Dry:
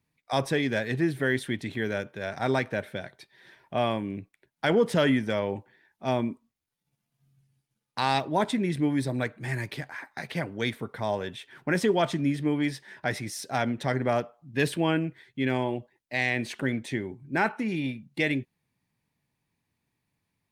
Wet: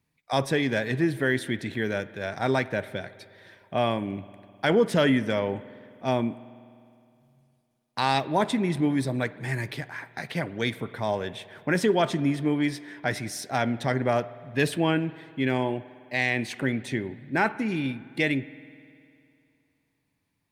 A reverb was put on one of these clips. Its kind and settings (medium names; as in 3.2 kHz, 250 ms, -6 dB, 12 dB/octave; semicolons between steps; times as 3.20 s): spring tank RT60 2.5 s, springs 51 ms, chirp 60 ms, DRR 17 dB; trim +1.5 dB